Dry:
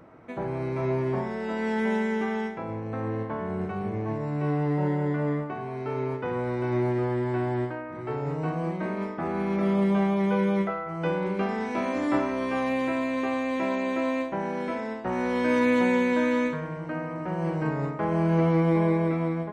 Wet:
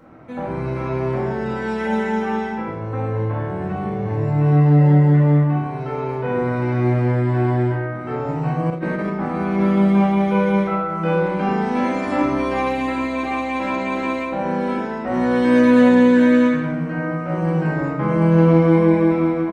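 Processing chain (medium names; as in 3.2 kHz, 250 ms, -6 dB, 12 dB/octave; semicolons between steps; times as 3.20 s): speakerphone echo 220 ms, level -17 dB; simulated room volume 370 m³, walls mixed, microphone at 2.1 m; 8.70–9.10 s: compressor with a negative ratio -23 dBFS, ratio -0.5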